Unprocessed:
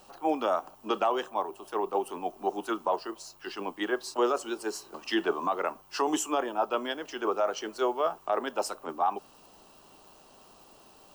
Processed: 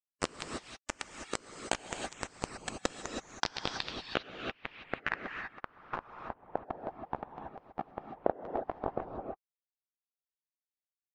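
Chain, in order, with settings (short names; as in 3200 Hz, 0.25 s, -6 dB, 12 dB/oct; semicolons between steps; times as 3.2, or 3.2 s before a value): high shelf 6800 Hz -10.5 dB; on a send: thin delay 0.174 s, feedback 59%, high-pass 2900 Hz, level -10 dB; on the sum: dynamic EQ 3800 Hz, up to +4 dB, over -49 dBFS, Q 0.92; limiter -23 dBFS, peak gain reduction 7 dB; compressor 5:1, threshold -48 dBFS, peak gain reduction 18 dB; companded quantiser 2-bit; low-pass sweep 15000 Hz -> 1500 Hz, 2.75–6.47; pitch shift -11 st; vibrato 0.86 Hz 9.8 cents; non-linear reverb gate 0.35 s rising, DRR 1 dB; harmonic-percussive split harmonic -14 dB; gain +9 dB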